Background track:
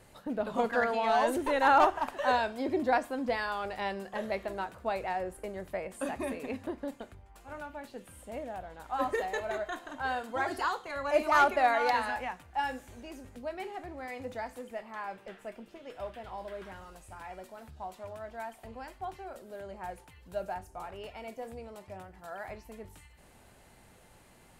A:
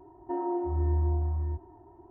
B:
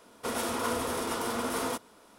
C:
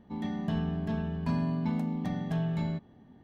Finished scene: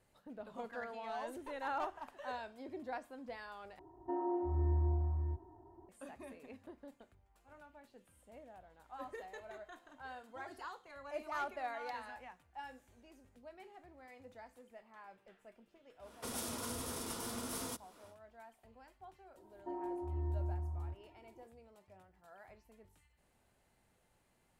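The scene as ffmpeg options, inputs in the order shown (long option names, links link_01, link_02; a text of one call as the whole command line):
ffmpeg -i bed.wav -i cue0.wav -i cue1.wav -filter_complex "[1:a]asplit=2[link_01][link_02];[0:a]volume=-16dB[link_03];[2:a]acrossover=split=220|3800[link_04][link_05][link_06];[link_05]acompressor=threshold=-40dB:ratio=4:attack=4.6:release=563:knee=2.83:detection=peak[link_07];[link_04][link_07][link_06]amix=inputs=3:normalize=0[link_08];[link_03]asplit=2[link_09][link_10];[link_09]atrim=end=3.794[link_11];[link_01]atrim=end=2.1,asetpts=PTS-STARTPTS,volume=-6dB[link_12];[link_10]atrim=start=5.886[link_13];[link_08]atrim=end=2.18,asetpts=PTS-STARTPTS,volume=-4.5dB,afade=type=in:duration=0.1,afade=type=out:start_time=2.08:duration=0.1,adelay=15990[link_14];[link_02]atrim=end=2.1,asetpts=PTS-STARTPTS,volume=-11dB,afade=type=in:duration=0.004:curve=hsin,afade=type=out:start_time=2.096:duration=0.004:curve=hsin,adelay=19370[link_15];[link_11][link_12]acrossfade=duration=0.004:curve1=hsin:curve2=hsin[link_16];[link_16][link_13]acrossfade=duration=0.004:curve1=hsin:curve2=hsin[link_17];[link_17][link_14][link_15]amix=inputs=3:normalize=0" out.wav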